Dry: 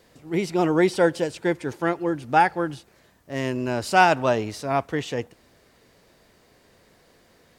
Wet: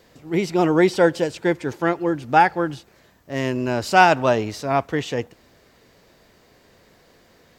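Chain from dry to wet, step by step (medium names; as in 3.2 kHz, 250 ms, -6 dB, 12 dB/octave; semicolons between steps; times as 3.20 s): peaking EQ 9.5 kHz -10.5 dB 0.22 oct; trim +3 dB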